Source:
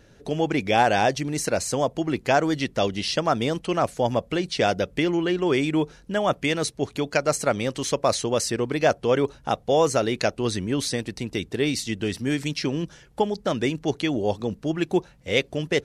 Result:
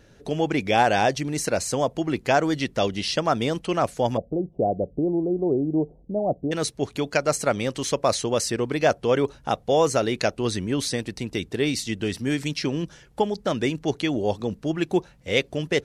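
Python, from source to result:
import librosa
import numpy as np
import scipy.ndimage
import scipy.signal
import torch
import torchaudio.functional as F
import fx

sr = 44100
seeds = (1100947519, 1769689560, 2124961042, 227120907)

y = fx.ellip_lowpass(x, sr, hz=730.0, order=4, stop_db=60, at=(4.16, 6.51), fade=0.02)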